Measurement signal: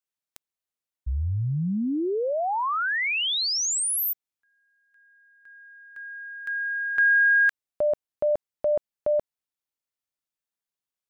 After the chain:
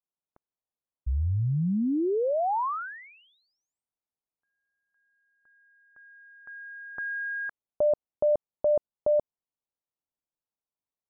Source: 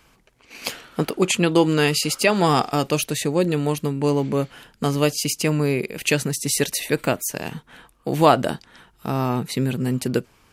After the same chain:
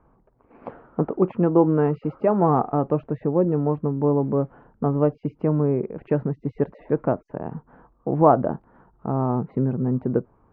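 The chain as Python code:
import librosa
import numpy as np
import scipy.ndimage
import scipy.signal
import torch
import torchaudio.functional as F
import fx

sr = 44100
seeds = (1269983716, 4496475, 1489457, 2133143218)

y = scipy.signal.sosfilt(scipy.signal.butter(4, 1100.0, 'lowpass', fs=sr, output='sos'), x)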